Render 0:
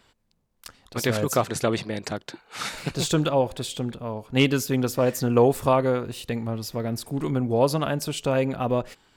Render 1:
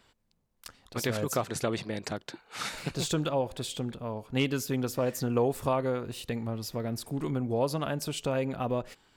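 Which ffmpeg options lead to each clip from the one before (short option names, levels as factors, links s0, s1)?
-af "acompressor=threshold=0.0447:ratio=1.5,volume=0.668"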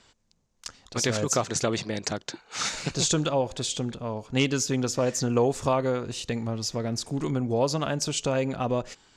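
-af "lowpass=f=6600:t=q:w=3,volume=1.5"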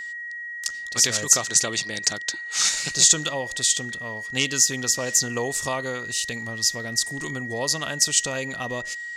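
-af "crystalizer=i=8:c=0,aeval=exprs='val(0)+0.0562*sin(2*PI*1900*n/s)':c=same,volume=0.473"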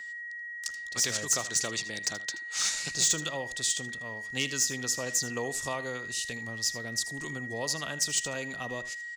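-filter_complex "[0:a]acrossover=split=350|1100|2200[s0][s1][s2][s3];[s3]asoftclip=type=tanh:threshold=0.282[s4];[s0][s1][s2][s4]amix=inputs=4:normalize=0,aecho=1:1:79:0.168,volume=0.447"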